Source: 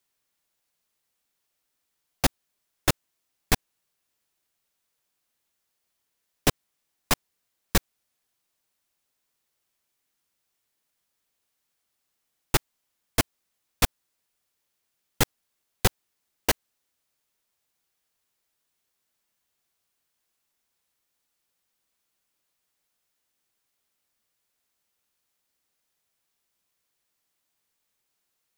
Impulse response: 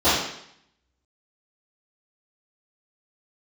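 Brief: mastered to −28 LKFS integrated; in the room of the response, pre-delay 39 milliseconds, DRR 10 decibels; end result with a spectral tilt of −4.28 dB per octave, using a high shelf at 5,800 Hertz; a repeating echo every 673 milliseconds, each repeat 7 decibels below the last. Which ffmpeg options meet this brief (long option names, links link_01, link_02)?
-filter_complex "[0:a]highshelf=frequency=5800:gain=-8.5,aecho=1:1:673|1346|2019|2692|3365:0.447|0.201|0.0905|0.0407|0.0183,asplit=2[link_01][link_02];[1:a]atrim=start_sample=2205,adelay=39[link_03];[link_02][link_03]afir=irnorm=-1:irlink=0,volume=-31dB[link_04];[link_01][link_04]amix=inputs=2:normalize=0,volume=3.5dB"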